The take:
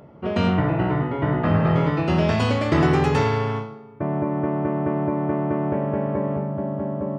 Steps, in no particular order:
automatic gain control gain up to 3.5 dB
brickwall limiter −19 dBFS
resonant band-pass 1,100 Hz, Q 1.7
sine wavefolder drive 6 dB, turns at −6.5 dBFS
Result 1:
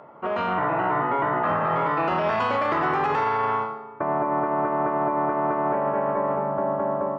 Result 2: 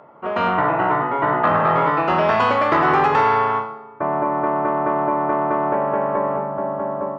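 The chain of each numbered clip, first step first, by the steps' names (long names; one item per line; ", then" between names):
resonant band-pass, then sine wavefolder, then brickwall limiter, then automatic gain control
resonant band-pass, then brickwall limiter, then automatic gain control, then sine wavefolder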